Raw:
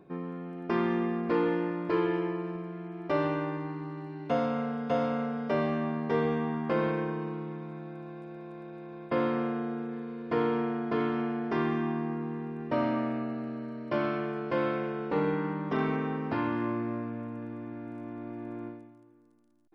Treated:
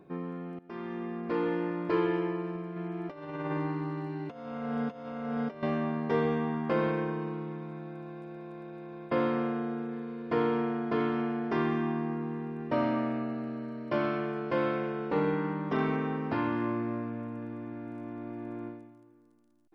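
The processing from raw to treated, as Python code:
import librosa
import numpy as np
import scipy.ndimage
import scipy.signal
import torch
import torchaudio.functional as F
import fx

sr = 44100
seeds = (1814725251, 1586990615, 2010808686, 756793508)

y = fx.over_compress(x, sr, threshold_db=-34.0, ratio=-0.5, at=(2.76, 5.63))
y = fx.edit(y, sr, fx.fade_in_from(start_s=0.59, length_s=1.22, floor_db=-19.0), tone=tone)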